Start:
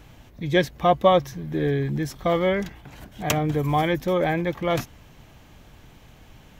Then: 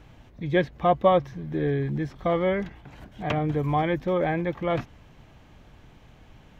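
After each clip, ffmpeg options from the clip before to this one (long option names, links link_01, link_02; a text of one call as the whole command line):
ffmpeg -i in.wav -filter_complex "[0:a]aemphasis=mode=reproduction:type=50kf,acrossover=split=3800[link_01][link_02];[link_02]acompressor=threshold=-58dB:ratio=4:attack=1:release=60[link_03];[link_01][link_03]amix=inputs=2:normalize=0,volume=-2dB" out.wav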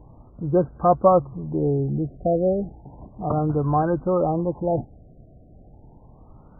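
ffmpeg -i in.wav -af "afftfilt=real='re*lt(b*sr/1024,740*pow(1600/740,0.5+0.5*sin(2*PI*0.33*pts/sr)))':imag='im*lt(b*sr/1024,740*pow(1600/740,0.5+0.5*sin(2*PI*0.33*pts/sr)))':win_size=1024:overlap=0.75,volume=3.5dB" out.wav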